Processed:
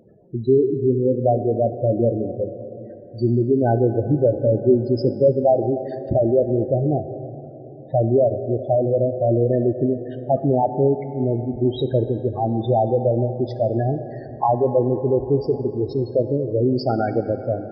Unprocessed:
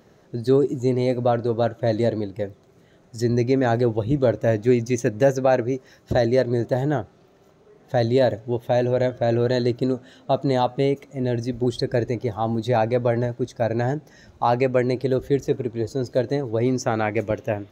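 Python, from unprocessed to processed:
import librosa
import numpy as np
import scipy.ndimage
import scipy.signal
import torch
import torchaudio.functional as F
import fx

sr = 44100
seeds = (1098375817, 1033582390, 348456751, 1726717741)

y = fx.freq_compress(x, sr, knee_hz=3200.0, ratio=1.5)
y = fx.spec_gate(y, sr, threshold_db=-10, keep='strong')
y = fx.rev_plate(y, sr, seeds[0], rt60_s=3.9, hf_ratio=0.35, predelay_ms=0, drr_db=10.0)
y = y * 10.0 ** (2.5 / 20.0)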